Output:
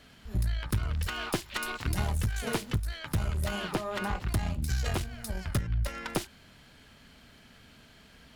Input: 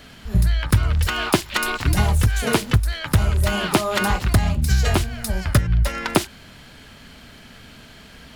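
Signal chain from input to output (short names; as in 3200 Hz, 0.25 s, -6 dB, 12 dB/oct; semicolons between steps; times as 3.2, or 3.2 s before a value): 3.71–4.28 high shelf 3500 Hz -9 dB; tube stage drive 11 dB, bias 0.6; gain -8.5 dB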